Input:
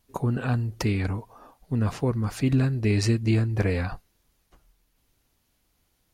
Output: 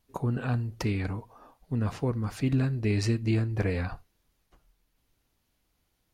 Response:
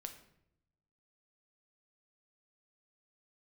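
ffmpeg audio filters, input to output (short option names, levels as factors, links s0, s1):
-filter_complex "[0:a]asplit=2[s0][s1];[1:a]atrim=start_sample=2205,atrim=end_sample=3969,lowpass=6100[s2];[s1][s2]afir=irnorm=-1:irlink=0,volume=0.562[s3];[s0][s3]amix=inputs=2:normalize=0,volume=0.501"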